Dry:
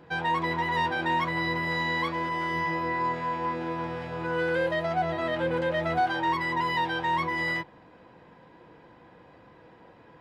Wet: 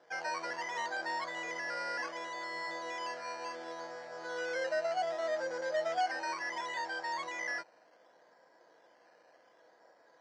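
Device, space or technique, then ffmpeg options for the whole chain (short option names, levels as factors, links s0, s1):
circuit-bent sampling toy: -af "acrusher=samples=10:mix=1:aa=0.000001:lfo=1:lforange=6:lforate=0.68,highpass=590,equalizer=f=630:t=q:w=4:g=8,equalizer=f=1000:t=q:w=4:g=-5,equalizer=f=1700:t=q:w=4:g=3,equalizer=f=2600:t=q:w=4:g=-10,equalizer=f=3700:t=q:w=4:g=-8,lowpass=f=5400:w=0.5412,lowpass=f=5400:w=1.3066,volume=0.447"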